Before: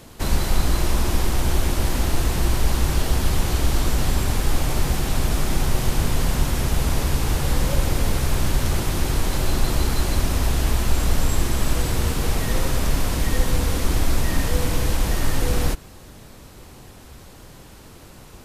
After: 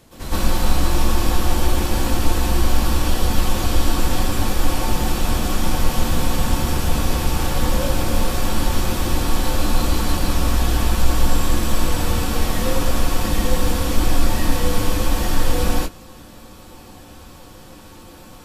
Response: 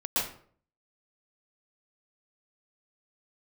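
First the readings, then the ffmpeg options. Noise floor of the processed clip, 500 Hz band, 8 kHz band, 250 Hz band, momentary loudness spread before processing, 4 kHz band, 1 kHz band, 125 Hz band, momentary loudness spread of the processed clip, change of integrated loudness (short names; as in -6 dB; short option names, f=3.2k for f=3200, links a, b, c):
-42 dBFS, +3.0 dB, +1.5 dB, +4.0 dB, 1 LU, +3.0 dB, +5.0 dB, 0.0 dB, 2 LU, +1.5 dB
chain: -filter_complex "[1:a]atrim=start_sample=2205,afade=t=out:st=0.19:d=0.01,atrim=end_sample=8820[a];[0:a][a]afir=irnorm=-1:irlink=0,volume=-4.5dB"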